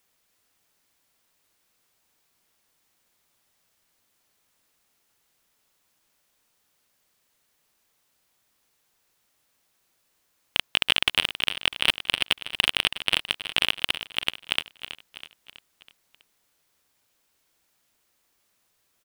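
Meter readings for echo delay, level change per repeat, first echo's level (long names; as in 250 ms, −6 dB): 325 ms, −5.5 dB, −12.0 dB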